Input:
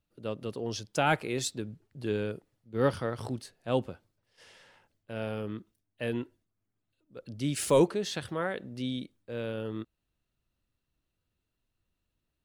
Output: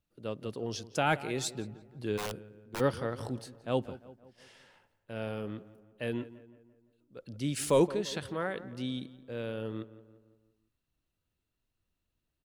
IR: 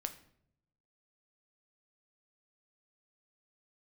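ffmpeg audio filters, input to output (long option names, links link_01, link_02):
-filter_complex "[0:a]asplit=2[link_01][link_02];[link_02]adelay=171,lowpass=frequency=2200:poles=1,volume=-16dB,asplit=2[link_03][link_04];[link_04]adelay=171,lowpass=frequency=2200:poles=1,volume=0.52,asplit=2[link_05][link_06];[link_06]adelay=171,lowpass=frequency=2200:poles=1,volume=0.52,asplit=2[link_07][link_08];[link_08]adelay=171,lowpass=frequency=2200:poles=1,volume=0.52,asplit=2[link_09][link_10];[link_10]adelay=171,lowpass=frequency=2200:poles=1,volume=0.52[link_11];[link_01][link_03][link_05][link_07][link_09][link_11]amix=inputs=6:normalize=0,asplit=3[link_12][link_13][link_14];[link_12]afade=type=out:start_time=2.17:duration=0.02[link_15];[link_13]aeval=exprs='(mod(25.1*val(0)+1,2)-1)/25.1':channel_layout=same,afade=type=in:start_time=2.17:duration=0.02,afade=type=out:start_time=2.79:duration=0.02[link_16];[link_14]afade=type=in:start_time=2.79:duration=0.02[link_17];[link_15][link_16][link_17]amix=inputs=3:normalize=0,volume=-2dB"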